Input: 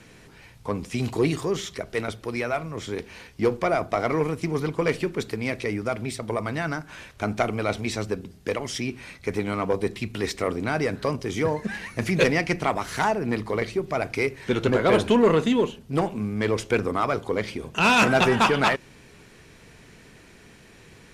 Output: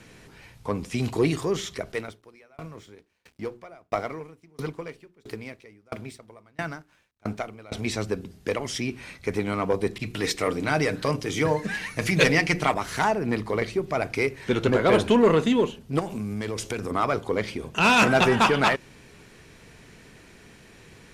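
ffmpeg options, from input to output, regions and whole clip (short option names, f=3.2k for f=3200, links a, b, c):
-filter_complex "[0:a]asettb=1/sr,asplit=3[a][b][c];[a]atrim=end=1.924[d];[b]atrim=start=1.92:end=7.72,asetpts=PTS-STARTPTS,afade=t=in:d=0.004:c=qsin,afade=t=out:st=5.796:d=0.004:c=qsin,aeval=exprs='sgn(val(0))*max(abs(val(0))-0.00316,0)':c=same,bandreject=f=60:t=h:w=6,bandreject=f=120:t=h:w=6,bandreject=f=180:t=h:w=6,bandreject=f=240:t=h:w=6,bandreject=f=300:t=h:w=6,bandreject=f=360:t=h:w=6,bandreject=f=420:t=h:w=6,aeval=exprs='val(0)*pow(10,-33*if(lt(mod(1.5*n/s,1),2*abs(1.5)/1000),1-mod(1.5*n/s,1)/(2*abs(1.5)/1000),(mod(1.5*n/s,1)-2*abs(1.5)/1000)/(1-2*abs(1.5)/1000))/20)':c=same[e];[c]atrim=start=7.716[f];[d][e]acrossfade=d=0.004:c1=hsin:c2=qsin[g];[g][f]acrossfade=d=0.004:c1=qsin:c2=hsin,asettb=1/sr,asplit=3[h][i][j];[h]atrim=end=9.984[k];[i]atrim=start=9.98:end=12.74,asetpts=PTS-STARTPTS,afade=t=in:d=0.004:c=qsin,afade=t=out:st=2.756:d=0.004:c=qsin,bandreject=f=60:t=h:w=6,bandreject=f=120:t=h:w=6,bandreject=f=180:t=h:w=6,bandreject=f=240:t=h:w=6,bandreject=f=300:t=h:w=6,bandreject=f=360:t=h:w=6,bandreject=f=420:t=h:w=6,bandreject=f=480:t=h:w=6,bandreject=f=540:t=h:w=6,aecho=1:1:6.6:0.38,atrim=end_sample=121716,adynamicequalizer=threshold=0.0158:dfrequency=1600:dqfactor=0.7:tfrequency=1600:tqfactor=0.7:attack=5:release=100:ratio=0.375:range=2:mode=boostabove:tftype=highshelf[l];[j]atrim=start=12.736[m];[k][l]acrossfade=d=0.004:c1=hsin:c2=qsin[n];[n][m]acrossfade=d=0.004:c1=qsin:c2=hsin,asettb=1/sr,asplit=3[o][p][q];[o]atrim=end=15.994[r];[p]atrim=start=15.99:end=16.91,asetpts=PTS-STARTPTS,afade=t=in:d=0.004:c=qsin,afade=t=out:st=0.916:d=0.004:c=qsin,bass=f=250:g=2,treble=f=4k:g=9,acompressor=threshold=-27dB:ratio=4:attack=3.2:release=140:knee=1:detection=peak[s];[q]atrim=start=16.906[t];[r][s]acrossfade=d=0.004:c1=hsin:c2=qsin[u];[u][t]acrossfade=d=0.004:c1=qsin:c2=hsin"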